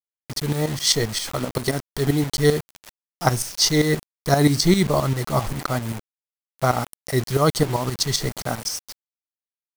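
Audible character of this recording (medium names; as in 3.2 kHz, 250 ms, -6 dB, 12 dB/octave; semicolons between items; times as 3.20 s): tremolo saw up 7.6 Hz, depth 75%; a quantiser's noise floor 6-bit, dither none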